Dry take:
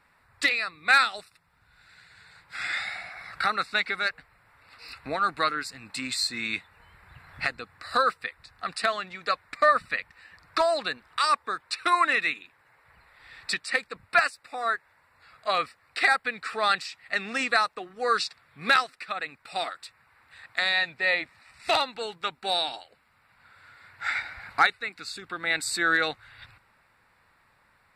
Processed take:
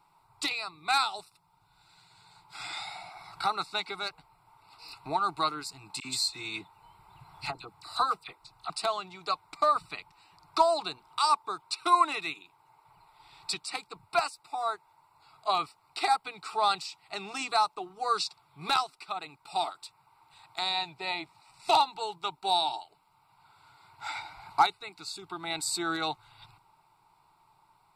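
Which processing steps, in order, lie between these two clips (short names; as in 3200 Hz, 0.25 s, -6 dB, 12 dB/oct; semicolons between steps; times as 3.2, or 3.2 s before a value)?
bell 900 Hz +10 dB 0.22 oct; fixed phaser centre 350 Hz, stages 8; 6–8.7 dispersion lows, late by 48 ms, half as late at 1800 Hz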